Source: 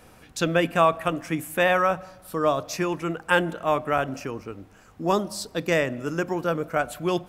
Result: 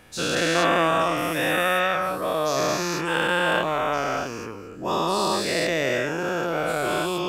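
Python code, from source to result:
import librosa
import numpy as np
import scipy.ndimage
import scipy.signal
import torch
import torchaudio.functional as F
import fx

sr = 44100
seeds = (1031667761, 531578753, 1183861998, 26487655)

y = fx.spec_dilate(x, sr, span_ms=480)
y = fx.dynamic_eq(y, sr, hz=4100.0, q=1.8, threshold_db=-38.0, ratio=4.0, max_db=6)
y = F.gain(torch.from_numpy(y), -7.5).numpy()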